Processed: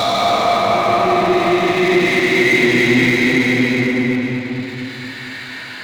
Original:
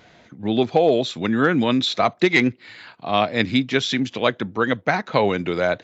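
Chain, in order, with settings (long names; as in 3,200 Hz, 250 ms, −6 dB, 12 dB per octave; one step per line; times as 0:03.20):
extreme stretch with random phases 6.7×, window 0.50 s, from 0:01.95
power curve on the samples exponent 0.7
delay with a low-pass on its return 226 ms, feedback 62%, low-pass 2,900 Hz, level −5.5 dB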